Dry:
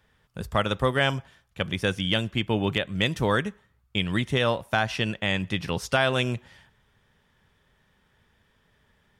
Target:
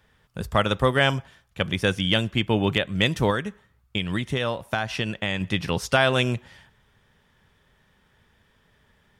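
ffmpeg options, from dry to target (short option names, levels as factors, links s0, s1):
-filter_complex "[0:a]asettb=1/sr,asplit=3[s0][s1][s2];[s0]atrim=end=3.304[s3];[s1]atrim=start=3.3:end=5.41,asetpts=PTS-STARTPTS,afade=t=in:d=0.004:c=qsin,afade=t=out:st=2.106:d=0.004:c=qsin,acompressor=threshold=0.0447:ratio=2.5[s4];[s2]atrim=start=5.406[s5];[s3][s4]acrossfade=d=0.004:c1=hsin:c2=qsin[s6];[s6][s5]acrossfade=d=0.004:c1=qsin:c2=hsin,volume=1.41"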